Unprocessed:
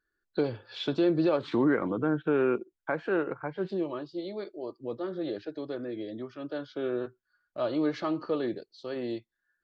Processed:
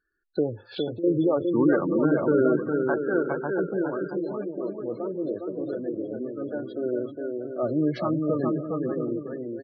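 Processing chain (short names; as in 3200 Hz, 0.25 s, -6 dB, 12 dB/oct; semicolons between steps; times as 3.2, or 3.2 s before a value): 0.62–1.04 compressor 4:1, threshold -38 dBFS, peak gain reduction 14 dB; 7.63–8.49 resonant low shelf 270 Hz +7 dB, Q 1.5; bouncing-ball echo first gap 0.41 s, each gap 0.65×, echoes 5; spectral gate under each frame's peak -20 dB strong; 2.12–2.57 bell 640 Hz +11.5 dB 0.25 oct; 4.31–4.89 echo throw 0.29 s, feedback 50%, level -14 dB; gain +3 dB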